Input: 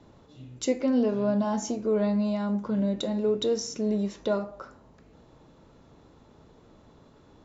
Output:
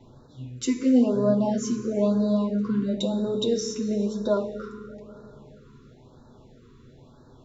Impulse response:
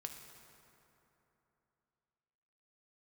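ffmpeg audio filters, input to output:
-filter_complex "[0:a]lowshelf=frequency=170:gain=5,asplit=2[link_01][link_02];[1:a]atrim=start_sample=2205,asetrate=43659,aresample=44100,adelay=8[link_03];[link_02][link_03]afir=irnorm=-1:irlink=0,volume=3dB[link_04];[link_01][link_04]amix=inputs=2:normalize=0,afftfilt=real='re*(1-between(b*sr/1024,650*pow(2600/650,0.5+0.5*sin(2*PI*1*pts/sr))/1.41,650*pow(2600/650,0.5+0.5*sin(2*PI*1*pts/sr))*1.41))':imag='im*(1-between(b*sr/1024,650*pow(2600/650,0.5+0.5*sin(2*PI*1*pts/sr))/1.41,650*pow(2600/650,0.5+0.5*sin(2*PI*1*pts/sr))*1.41))':win_size=1024:overlap=0.75,volume=-1dB"

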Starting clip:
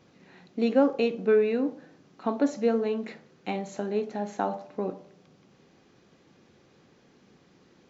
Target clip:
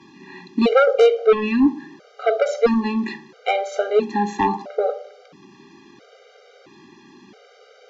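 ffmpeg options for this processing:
ffmpeg -i in.wav -filter_complex "[0:a]acrossover=split=210 6300:gain=0.141 1 0.251[link_01][link_02][link_03];[link_01][link_02][link_03]amix=inputs=3:normalize=0,aeval=exprs='0.316*sin(PI/2*2.82*val(0)/0.316)':channel_layout=same,afftfilt=real='re*gt(sin(2*PI*0.75*pts/sr)*(1-2*mod(floor(b*sr/1024/400),2)),0)':imag='im*gt(sin(2*PI*0.75*pts/sr)*(1-2*mod(floor(b*sr/1024/400),2)),0)':win_size=1024:overlap=0.75,volume=3.5dB" out.wav

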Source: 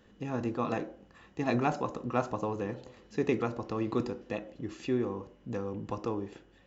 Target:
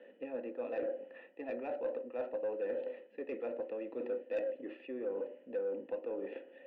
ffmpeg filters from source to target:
ffmpeg -i in.wav -filter_complex "[0:a]areverse,acompressor=threshold=-39dB:ratio=16,areverse,asplit=3[link_01][link_02][link_03];[link_01]bandpass=frequency=530:width_type=q:width=8,volume=0dB[link_04];[link_02]bandpass=frequency=1840:width_type=q:width=8,volume=-6dB[link_05];[link_03]bandpass=frequency=2480:width_type=q:width=8,volume=-9dB[link_06];[link_04][link_05][link_06]amix=inputs=3:normalize=0,highpass=frequency=150:width=0.5412,highpass=frequency=150:width=1.3066,equalizer=frequency=160:width_type=q:width=4:gain=-5,equalizer=frequency=260:width_type=q:width=4:gain=10,equalizer=frequency=450:width_type=q:width=4:gain=-3,equalizer=frequency=1000:width_type=q:width=4:gain=8,equalizer=frequency=1700:width_type=q:width=4:gain=-6,lowpass=frequency=3500:width=0.5412,lowpass=frequency=3500:width=1.3066,asplit=2[link_07][link_08];[link_08]highpass=frequency=720:poles=1,volume=17dB,asoftclip=type=tanh:threshold=-35dB[link_09];[link_07][link_09]amix=inputs=2:normalize=0,lowpass=frequency=1100:poles=1,volume=-6dB,volume=10.5dB" out.wav

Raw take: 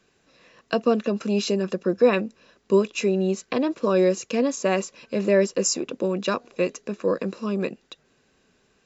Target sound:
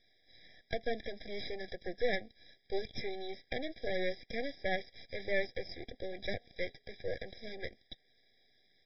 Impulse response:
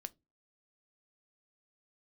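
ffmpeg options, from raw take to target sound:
-filter_complex "[0:a]acrossover=split=2500[link_01][link_02];[link_02]acompressor=threshold=-49dB:ratio=4:attack=1:release=60[link_03];[link_01][link_03]amix=inputs=2:normalize=0,aderivative,aresample=11025,aeval=exprs='max(val(0),0)':channel_layout=same,aresample=44100,afftfilt=real='re*eq(mod(floor(b*sr/1024/800),2),0)':imag='im*eq(mod(floor(b*sr/1024/800),2),0)':win_size=1024:overlap=0.75,volume=13dB"

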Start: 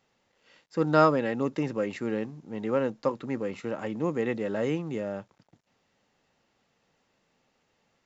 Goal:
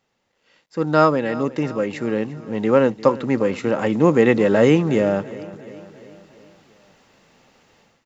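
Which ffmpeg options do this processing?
ffmpeg -i in.wav -af "dynaudnorm=framelen=520:gausssize=3:maxgain=16dB,aecho=1:1:349|698|1047|1396|1745:0.126|0.0705|0.0395|0.0221|0.0124" out.wav

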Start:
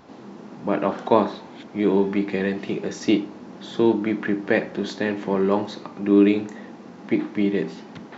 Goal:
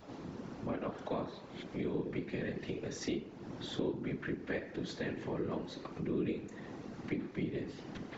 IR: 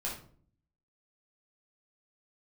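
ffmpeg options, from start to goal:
-af "bandreject=frequency=80.34:width_type=h:width=4,bandreject=frequency=160.68:width_type=h:width=4,bandreject=frequency=241.02:width_type=h:width=4,bandreject=frequency=321.36:width_type=h:width=4,bandreject=frequency=401.7:width_type=h:width=4,bandreject=frequency=482.04:width_type=h:width=4,bandreject=frequency=562.38:width_type=h:width=4,bandreject=frequency=642.72:width_type=h:width=4,bandreject=frequency=723.06:width_type=h:width=4,bandreject=frequency=803.4:width_type=h:width=4,bandreject=frequency=883.74:width_type=h:width=4,bandreject=frequency=964.08:width_type=h:width=4,bandreject=frequency=1044.42:width_type=h:width=4,bandreject=frequency=1124.76:width_type=h:width=4,bandreject=frequency=1205.1:width_type=h:width=4,bandreject=frequency=1285.44:width_type=h:width=4,bandreject=frequency=1365.78:width_type=h:width=4,bandreject=frequency=1446.12:width_type=h:width=4,bandreject=frequency=1526.46:width_type=h:width=4,bandreject=frequency=1606.8:width_type=h:width=4,bandreject=frequency=1687.14:width_type=h:width=4,bandreject=frequency=1767.48:width_type=h:width=4,bandreject=frequency=1847.82:width_type=h:width=4,bandreject=frequency=1928.16:width_type=h:width=4,bandreject=frequency=2008.5:width_type=h:width=4,bandreject=frequency=2088.84:width_type=h:width=4,bandreject=frequency=2169.18:width_type=h:width=4,bandreject=frequency=2249.52:width_type=h:width=4,bandreject=frequency=2329.86:width_type=h:width=4,bandreject=frequency=2410.2:width_type=h:width=4,bandreject=frequency=2490.54:width_type=h:width=4,bandreject=frequency=2570.88:width_type=h:width=4,bandreject=frequency=2651.22:width_type=h:width=4,bandreject=frequency=2731.56:width_type=h:width=4,bandreject=frequency=2811.9:width_type=h:width=4,bandreject=frequency=2892.24:width_type=h:width=4,bandreject=frequency=2972.58:width_type=h:width=4,bandreject=frequency=3052.92:width_type=h:width=4,bandreject=frequency=3133.26:width_type=h:width=4,afftfilt=real='hypot(re,im)*cos(2*PI*random(0))':imag='hypot(re,im)*sin(2*PI*random(1))':win_size=512:overlap=0.75,acompressor=threshold=-42dB:ratio=2.5,adynamicequalizer=threshold=0.001:dfrequency=850:dqfactor=1.9:tfrequency=850:tqfactor=1.9:attack=5:release=100:ratio=0.375:range=2.5:mode=cutabove:tftype=bell,volume=2.5dB"

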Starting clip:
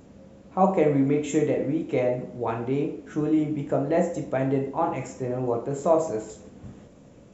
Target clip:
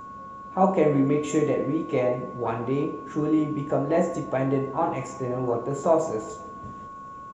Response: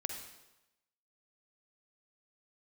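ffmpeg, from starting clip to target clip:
-filter_complex "[0:a]asplit=2[link_01][link_02];[link_02]adelay=172,lowpass=frequency=1900:poles=1,volume=-18dB,asplit=2[link_03][link_04];[link_04]adelay=172,lowpass=frequency=1900:poles=1,volume=0.53,asplit=2[link_05][link_06];[link_06]adelay=172,lowpass=frequency=1900:poles=1,volume=0.53,asplit=2[link_07][link_08];[link_08]adelay=172,lowpass=frequency=1900:poles=1,volume=0.53[link_09];[link_01][link_03][link_05][link_07][link_09]amix=inputs=5:normalize=0,aeval=exprs='val(0)+0.0126*sin(2*PI*1100*n/s)':channel_layout=same,asplit=2[link_10][link_11];[link_11]asetrate=58866,aresample=44100,atempo=0.749154,volume=-18dB[link_12];[link_10][link_12]amix=inputs=2:normalize=0"

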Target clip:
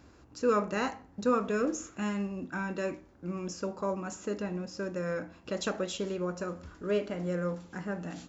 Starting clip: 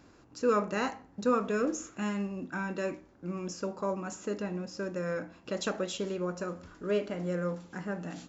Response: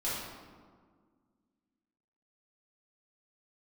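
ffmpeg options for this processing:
-af "equalizer=frequency=68:width=3:gain=13.5"

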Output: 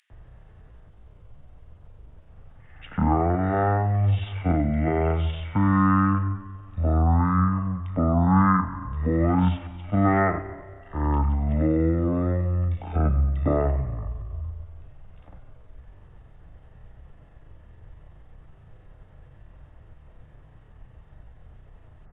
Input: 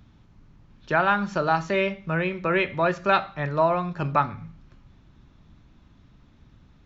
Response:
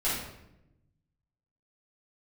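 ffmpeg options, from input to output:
-filter_complex "[0:a]acrossover=split=110|440|2100[link_01][link_02][link_03][link_04];[link_03]acompressor=threshold=-38dB:ratio=6[link_05];[link_01][link_02][link_05][link_04]amix=inputs=4:normalize=0,atempo=0.62,acrossover=split=4200[link_06][link_07];[link_06]adelay=50[link_08];[link_08][link_07]amix=inputs=2:normalize=0,asetrate=22050,aresample=44100,volume=7dB"

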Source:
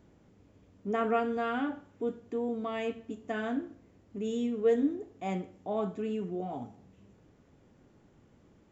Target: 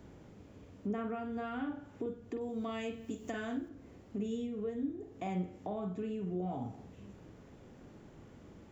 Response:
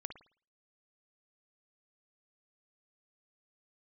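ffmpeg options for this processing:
-filter_complex "[0:a]asettb=1/sr,asplit=3[link_01][link_02][link_03];[link_01]atrim=end=2.414[link_04];[link_02]atrim=start=2.41:end=3.69,asetpts=PTS-STARTPTS,afade=type=in:duration=0.004:curve=qsin,afade=type=out:start_time=1.276:duration=0.004:curve=qsin,aemphasis=mode=production:type=75kf[link_05];[link_03]atrim=start=3.686[link_06];[link_04][link_05]acrossfade=duration=0.004:curve1=hsin:curve2=qsin[link_07];[link_07][link_06]acrossfade=duration=0.004:curve1=qsin:curve2=hsin,acrossover=split=150[link_08][link_09];[link_09]acompressor=threshold=-44dB:ratio=12[link_10];[link_08][link_10]amix=inputs=2:normalize=0[link_11];[1:a]atrim=start_sample=2205,atrim=end_sample=3969,asetrate=52920,aresample=44100[link_12];[link_11][link_12]afir=irnorm=-1:irlink=0,volume=11.5dB"

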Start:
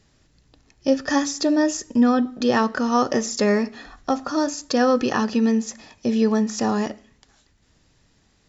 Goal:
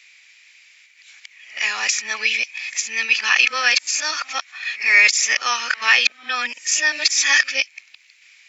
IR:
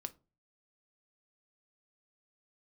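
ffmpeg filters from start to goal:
-af "areverse,highpass=frequency=2300:width_type=q:width=10,alimiter=level_in=10.5dB:limit=-1dB:release=50:level=0:latency=1,volume=-1dB"

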